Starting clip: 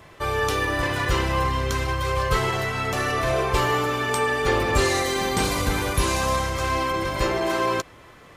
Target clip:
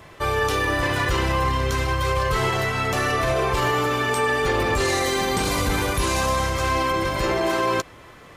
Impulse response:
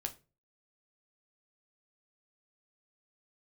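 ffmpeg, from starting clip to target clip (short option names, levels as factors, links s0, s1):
-af "alimiter=limit=0.168:level=0:latency=1:release=19,volume=1.33"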